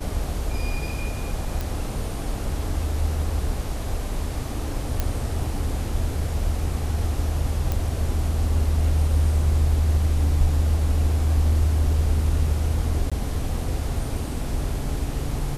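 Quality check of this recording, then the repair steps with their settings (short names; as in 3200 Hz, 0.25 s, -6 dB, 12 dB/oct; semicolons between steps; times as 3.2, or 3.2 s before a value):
1.61 pop
5 pop -9 dBFS
7.72 pop
13.1–13.12 gap 16 ms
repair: de-click; interpolate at 13.1, 16 ms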